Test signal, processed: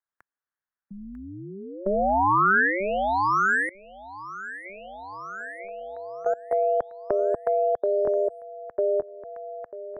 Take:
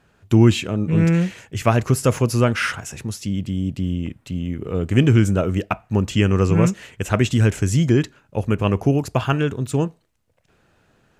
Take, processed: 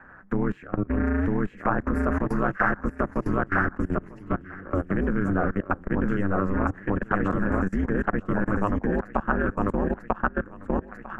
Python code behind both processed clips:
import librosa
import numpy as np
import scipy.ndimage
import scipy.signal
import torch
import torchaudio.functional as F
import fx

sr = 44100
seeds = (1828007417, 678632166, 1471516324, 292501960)

p1 = x + fx.echo_feedback(x, sr, ms=946, feedback_pct=42, wet_db=-3, dry=0)
p2 = fx.level_steps(p1, sr, step_db=21)
p3 = fx.dynamic_eq(p2, sr, hz=2100.0, q=1.3, threshold_db=-41.0, ratio=4.0, max_db=-6)
p4 = p3 * np.sin(2.0 * np.pi * 97.0 * np.arange(len(p3)) / sr)
p5 = fx.curve_eq(p4, sr, hz=(480.0, 1700.0, 2400.0, 3500.0), db=(0, 13, -7, -23))
y = fx.band_squash(p5, sr, depth_pct=40)